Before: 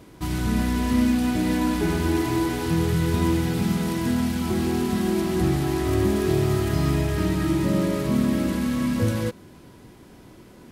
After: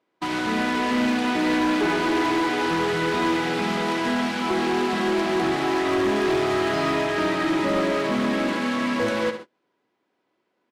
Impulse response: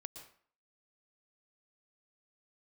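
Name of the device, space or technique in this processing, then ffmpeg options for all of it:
walkie-talkie: -af "highpass=440,lowpass=2900,highshelf=f=5700:g=9,aecho=1:1:68|136|204|272:0.316|0.111|0.0387|0.0136,asoftclip=type=hard:threshold=0.0501,agate=range=0.0355:threshold=0.00708:ratio=16:detection=peak,volume=2.66"

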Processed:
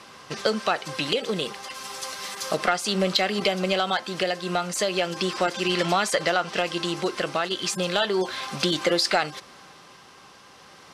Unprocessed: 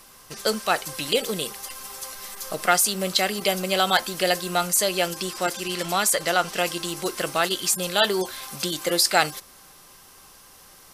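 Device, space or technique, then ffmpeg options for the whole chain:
AM radio: -filter_complex "[0:a]asettb=1/sr,asplit=3[s0][s1][s2];[s0]atrim=end=1.744[s3];[s1]atrim=start=1.74:end=2.57,asetpts=PTS-STARTPTS,afade=t=in:d=0.004:c=qsin,afade=t=out:st=0.826:d=0.004:c=qsin,aemphasis=mode=production:type=cd[s4];[s2]atrim=start=2.566[s5];[s3][s4]acrossfade=d=0.004:c1=hsin:c2=qsin[s6];[s6][s5]acrossfade=d=0.004:c1=qsin:c2=hsin,highpass=110,lowpass=4200,acompressor=threshold=0.0562:ratio=6,asoftclip=type=tanh:threshold=0.178,tremolo=f=0.34:d=0.32,volume=2.37"

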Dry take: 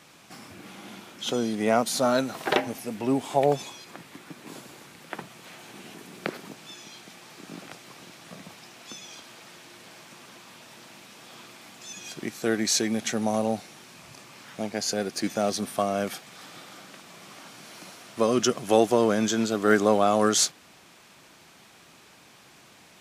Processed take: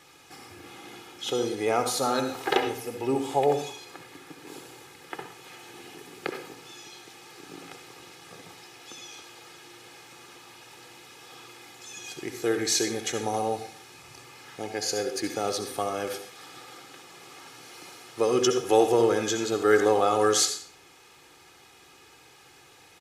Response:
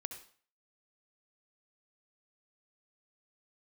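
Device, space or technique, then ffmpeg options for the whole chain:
microphone above a desk: -filter_complex "[0:a]aecho=1:1:2.4:0.71[s0];[1:a]atrim=start_sample=2205[s1];[s0][s1]afir=irnorm=-1:irlink=0"

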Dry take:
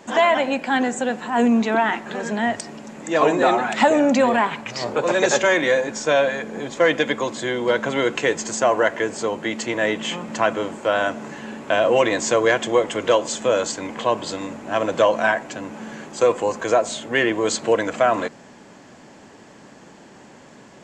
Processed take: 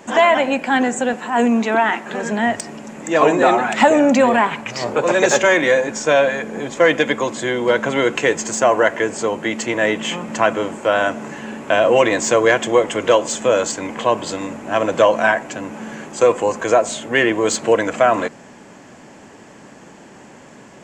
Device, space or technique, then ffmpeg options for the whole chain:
exciter from parts: -filter_complex "[0:a]asplit=2[s0][s1];[s1]highpass=3300,asoftclip=type=tanh:threshold=0.0841,highpass=f=2600:w=0.5412,highpass=f=2600:w=1.3066,volume=0.447[s2];[s0][s2]amix=inputs=2:normalize=0,asettb=1/sr,asplit=3[s3][s4][s5];[s3]atrim=end=1.134[s6];[s4]atrim=start=1.13:end=2.13,asetpts=PTS-STARTPTS,afade=t=in:d=0.004:c=qsin,afade=t=out:st=0.996:d=0.004:c=qsin,highpass=f=220:p=1[s7];[s5]atrim=start=2.126[s8];[s6][s7]acrossfade=d=0.004:c1=hsin:c2=qsin[s9];[s9][s8]acrossfade=d=0.004:c1=qsin:c2=hsin,volume=1.5"

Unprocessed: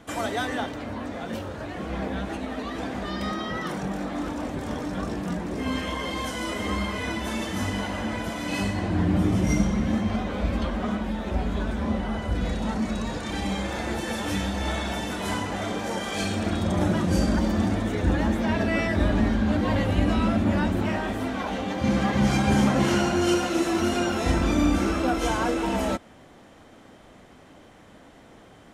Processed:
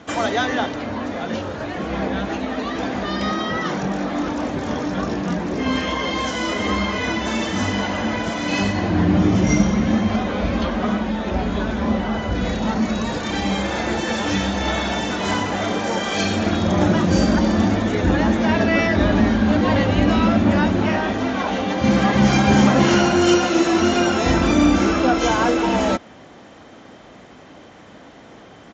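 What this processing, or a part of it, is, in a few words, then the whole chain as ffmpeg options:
Bluetooth headset: -af "highpass=f=110:p=1,aresample=16000,aresample=44100,volume=2.37" -ar 16000 -c:a sbc -b:a 64k

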